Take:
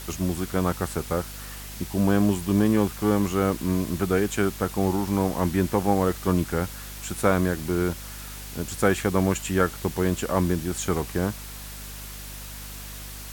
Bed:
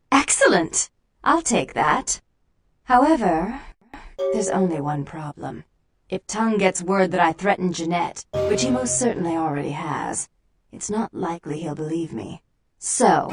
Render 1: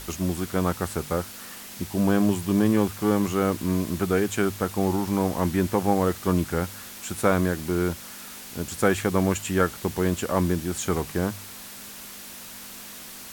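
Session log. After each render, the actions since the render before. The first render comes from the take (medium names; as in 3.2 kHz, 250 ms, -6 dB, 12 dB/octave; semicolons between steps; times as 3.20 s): de-hum 50 Hz, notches 3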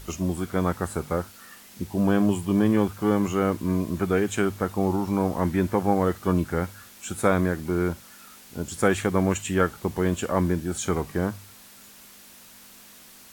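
noise print and reduce 8 dB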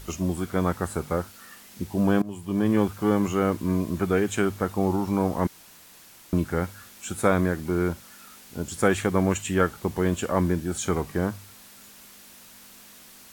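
2.22–2.78 s: fade in, from -21 dB; 5.47–6.33 s: room tone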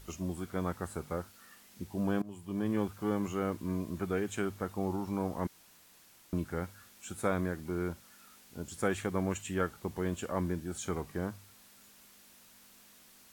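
trim -10 dB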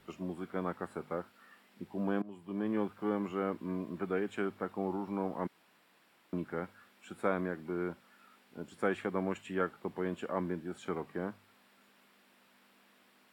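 three-band isolator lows -22 dB, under 160 Hz, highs -16 dB, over 3.3 kHz; band-stop 6.3 kHz, Q 7.4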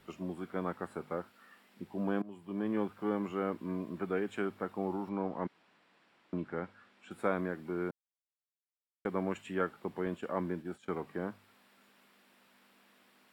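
5.09–7.11 s: distance through air 86 m; 7.91–9.05 s: mute; 10.06–11.02 s: expander -45 dBFS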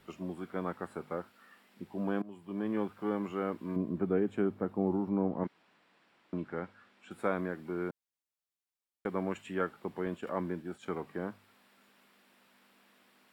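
3.76–5.44 s: tilt shelf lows +8 dB, about 740 Hz; 10.27–11.05 s: upward compressor, threshold -41 dBFS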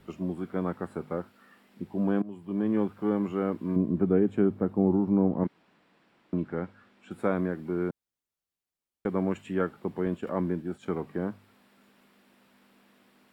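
bass shelf 480 Hz +9.5 dB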